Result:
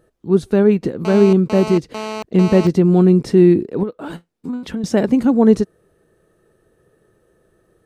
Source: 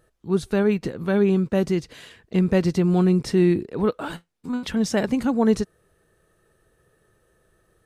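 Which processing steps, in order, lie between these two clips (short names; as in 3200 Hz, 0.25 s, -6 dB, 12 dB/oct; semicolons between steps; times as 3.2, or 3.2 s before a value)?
bell 310 Hz +9.5 dB 2.6 oct; 1.05–2.67 GSM buzz -25 dBFS; 3.83–4.84 compressor 8:1, threshold -21 dBFS, peak gain reduction 13.5 dB; gain -1 dB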